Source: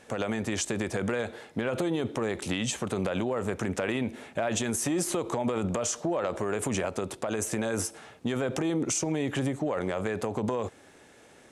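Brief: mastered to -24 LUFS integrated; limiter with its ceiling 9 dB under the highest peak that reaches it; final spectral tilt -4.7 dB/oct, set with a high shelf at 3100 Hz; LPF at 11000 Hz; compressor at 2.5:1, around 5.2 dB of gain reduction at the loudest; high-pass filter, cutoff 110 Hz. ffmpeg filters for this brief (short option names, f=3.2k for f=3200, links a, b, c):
-af "highpass=110,lowpass=11k,highshelf=f=3.1k:g=-6,acompressor=threshold=-33dB:ratio=2.5,volume=14.5dB,alimiter=limit=-14dB:level=0:latency=1"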